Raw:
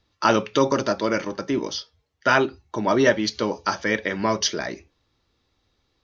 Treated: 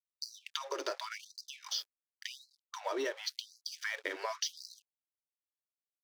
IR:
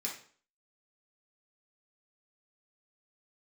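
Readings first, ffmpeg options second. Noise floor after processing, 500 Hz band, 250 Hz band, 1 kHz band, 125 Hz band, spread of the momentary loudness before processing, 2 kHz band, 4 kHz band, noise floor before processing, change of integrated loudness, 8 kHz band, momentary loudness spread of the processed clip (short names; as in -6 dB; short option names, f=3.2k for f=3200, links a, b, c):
under -85 dBFS, -19.5 dB, -26.5 dB, -19.0 dB, under -40 dB, 9 LU, -16.5 dB, -10.0 dB, -71 dBFS, -16.5 dB, n/a, 14 LU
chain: -filter_complex "[0:a]equalizer=f=4.3k:t=o:w=2.2:g=4.5,acrossover=split=290[a][b];[b]acompressor=threshold=-22dB:ratio=8[c];[a][c]amix=inputs=2:normalize=0,asplit=2[d][e];[e]alimiter=limit=-22dB:level=0:latency=1:release=420,volume=2dB[f];[d][f]amix=inputs=2:normalize=0,acompressor=threshold=-38dB:ratio=2,aeval=exprs='sgn(val(0))*max(abs(val(0))-0.00473,0)':c=same,afftfilt=real='re*gte(b*sr/1024,290*pow(4000/290,0.5+0.5*sin(2*PI*0.91*pts/sr)))':imag='im*gte(b*sr/1024,290*pow(4000/290,0.5+0.5*sin(2*PI*0.91*pts/sr)))':win_size=1024:overlap=0.75,volume=-1.5dB"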